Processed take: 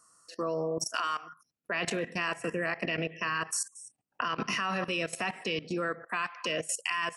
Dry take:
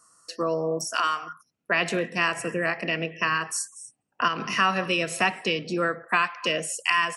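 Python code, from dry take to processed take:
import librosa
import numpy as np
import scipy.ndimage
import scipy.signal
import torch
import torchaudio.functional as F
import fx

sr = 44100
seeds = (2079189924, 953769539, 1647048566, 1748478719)

y = fx.level_steps(x, sr, step_db=16)
y = F.gain(torch.from_numpy(y), 1.0).numpy()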